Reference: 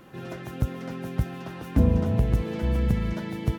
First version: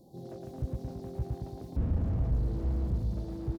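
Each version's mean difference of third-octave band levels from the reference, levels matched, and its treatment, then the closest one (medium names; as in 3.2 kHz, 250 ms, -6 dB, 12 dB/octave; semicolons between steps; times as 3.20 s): 6.0 dB: elliptic band-stop 780–4200 Hz; on a send: feedback delay 112 ms, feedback 55%, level -4 dB; on the sum: slew-rate limiter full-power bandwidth 9.5 Hz; trim -5.5 dB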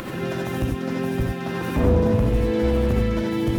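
4.5 dB: upward compressor, threshold -26 dBFS; hard clipper -21 dBFS, distortion -9 dB; gated-style reverb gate 110 ms rising, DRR -1 dB; trim +3 dB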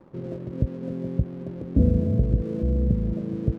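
9.0 dB: in parallel at 0 dB: compression, threshold -31 dBFS, peak gain reduction 15.5 dB; on the sum: elliptic low-pass 580 Hz, stop band 40 dB; crossover distortion -48.5 dBFS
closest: second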